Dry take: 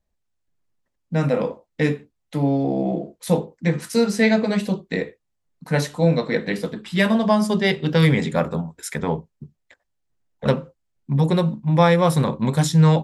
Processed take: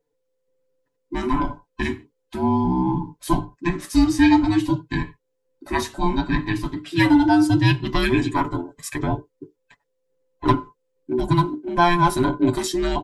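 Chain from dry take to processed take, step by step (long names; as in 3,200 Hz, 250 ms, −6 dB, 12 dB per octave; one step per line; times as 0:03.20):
frequency inversion band by band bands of 500 Hz
parametric band 150 Hz +5 dB 2 octaves
comb filter 7 ms, depth 69%
level −2.5 dB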